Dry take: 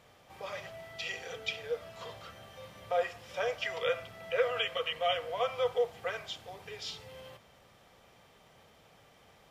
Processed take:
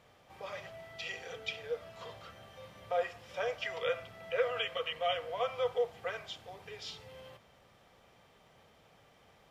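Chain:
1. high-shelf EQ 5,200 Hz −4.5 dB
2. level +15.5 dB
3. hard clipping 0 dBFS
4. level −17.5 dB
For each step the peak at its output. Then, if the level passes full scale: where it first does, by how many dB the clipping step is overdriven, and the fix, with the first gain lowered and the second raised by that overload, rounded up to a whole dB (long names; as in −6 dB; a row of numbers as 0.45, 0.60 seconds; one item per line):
−17.0, −1.5, −1.5, −19.0 dBFS
no step passes full scale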